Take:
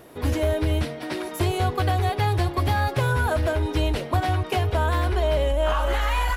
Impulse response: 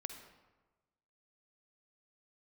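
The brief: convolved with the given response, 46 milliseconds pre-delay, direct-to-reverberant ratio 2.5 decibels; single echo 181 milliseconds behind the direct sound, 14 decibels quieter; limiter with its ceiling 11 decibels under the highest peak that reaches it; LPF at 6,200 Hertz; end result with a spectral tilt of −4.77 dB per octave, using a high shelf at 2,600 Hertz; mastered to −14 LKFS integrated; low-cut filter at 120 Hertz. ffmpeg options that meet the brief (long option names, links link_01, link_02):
-filter_complex "[0:a]highpass=120,lowpass=6200,highshelf=frequency=2600:gain=-5,alimiter=level_in=0.5dB:limit=-24dB:level=0:latency=1,volume=-0.5dB,aecho=1:1:181:0.2,asplit=2[link_01][link_02];[1:a]atrim=start_sample=2205,adelay=46[link_03];[link_02][link_03]afir=irnorm=-1:irlink=0,volume=0dB[link_04];[link_01][link_04]amix=inputs=2:normalize=0,volume=16.5dB"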